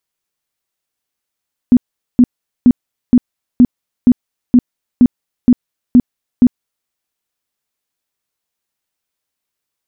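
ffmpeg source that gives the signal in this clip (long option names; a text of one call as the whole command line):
ffmpeg -f lavfi -i "aevalsrc='0.75*sin(2*PI*246*mod(t,0.47))*lt(mod(t,0.47),12/246)':duration=5.17:sample_rate=44100" out.wav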